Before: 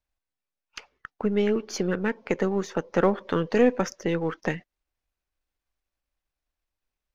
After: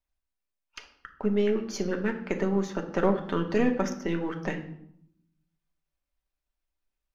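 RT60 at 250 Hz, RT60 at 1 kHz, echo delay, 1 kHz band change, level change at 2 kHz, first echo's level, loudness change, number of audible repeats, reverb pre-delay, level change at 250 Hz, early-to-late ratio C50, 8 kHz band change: 1.1 s, 0.70 s, no echo, -3.0 dB, -3.0 dB, no echo, -2.5 dB, no echo, 3 ms, -1.0 dB, 11.0 dB, no reading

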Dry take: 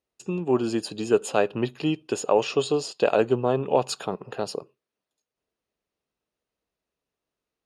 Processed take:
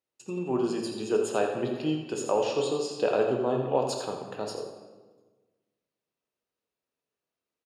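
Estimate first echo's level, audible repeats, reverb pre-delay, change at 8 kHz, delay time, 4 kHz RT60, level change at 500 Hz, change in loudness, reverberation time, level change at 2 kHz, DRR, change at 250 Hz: -10.0 dB, 1, 3 ms, -3.5 dB, 84 ms, 0.95 s, -3.5 dB, -3.5 dB, 1.3 s, -5.5 dB, 1.0 dB, -3.5 dB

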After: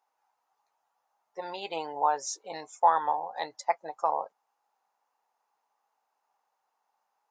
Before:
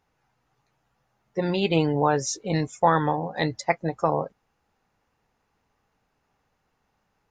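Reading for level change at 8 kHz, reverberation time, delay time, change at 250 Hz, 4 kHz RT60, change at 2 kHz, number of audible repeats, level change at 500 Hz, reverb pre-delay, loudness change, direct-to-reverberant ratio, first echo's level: -6.0 dB, no reverb, no echo, -22.5 dB, no reverb, -10.0 dB, no echo, -9.5 dB, no reverb, -5.0 dB, no reverb, no echo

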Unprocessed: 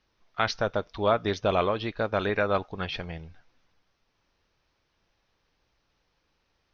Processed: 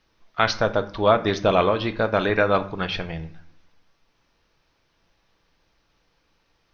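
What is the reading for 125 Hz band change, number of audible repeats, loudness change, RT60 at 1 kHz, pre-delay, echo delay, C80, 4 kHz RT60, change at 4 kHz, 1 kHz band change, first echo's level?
+5.0 dB, no echo, +5.5 dB, 0.55 s, 3 ms, no echo, 18.5 dB, 0.40 s, +6.0 dB, +6.0 dB, no echo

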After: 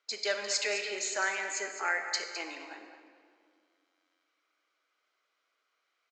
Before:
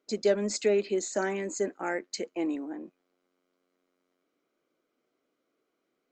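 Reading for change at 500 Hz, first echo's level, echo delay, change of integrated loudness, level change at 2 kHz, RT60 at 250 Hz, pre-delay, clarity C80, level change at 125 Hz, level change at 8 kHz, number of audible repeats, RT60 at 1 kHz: -10.0 dB, -10.5 dB, 210 ms, -2.0 dB, +7.0 dB, 2.7 s, 21 ms, 6.0 dB, under -25 dB, +2.5 dB, 1, 2.0 s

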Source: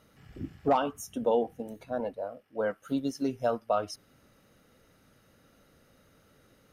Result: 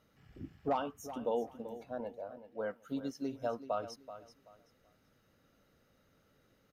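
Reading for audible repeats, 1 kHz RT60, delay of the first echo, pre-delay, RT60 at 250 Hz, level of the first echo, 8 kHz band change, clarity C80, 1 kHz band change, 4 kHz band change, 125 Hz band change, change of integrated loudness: 2, no reverb, 381 ms, no reverb, no reverb, -13.0 dB, -9.5 dB, no reverb, -8.0 dB, -8.0 dB, -8.0 dB, -7.5 dB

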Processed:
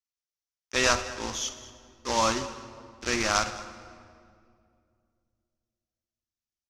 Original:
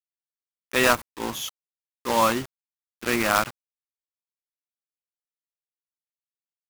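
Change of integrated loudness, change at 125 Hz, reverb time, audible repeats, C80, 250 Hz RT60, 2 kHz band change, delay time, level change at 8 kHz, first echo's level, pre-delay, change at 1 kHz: -3.5 dB, -2.0 dB, 2.3 s, 2, 12.5 dB, 2.9 s, -4.0 dB, 54 ms, +2.0 dB, -14.0 dB, 4 ms, -4.0 dB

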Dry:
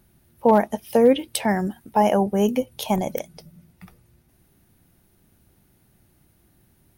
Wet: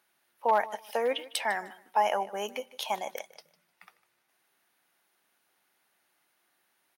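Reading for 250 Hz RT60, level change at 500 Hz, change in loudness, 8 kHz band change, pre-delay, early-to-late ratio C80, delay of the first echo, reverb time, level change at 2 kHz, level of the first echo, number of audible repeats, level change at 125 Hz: no reverb, -11.5 dB, -9.5 dB, -7.5 dB, no reverb, no reverb, 152 ms, no reverb, -1.5 dB, -18.5 dB, 2, under -25 dB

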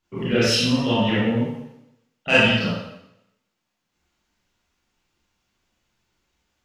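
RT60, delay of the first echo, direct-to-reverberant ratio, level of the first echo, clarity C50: 0.80 s, no echo, -10.0 dB, no echo, -2.5 dB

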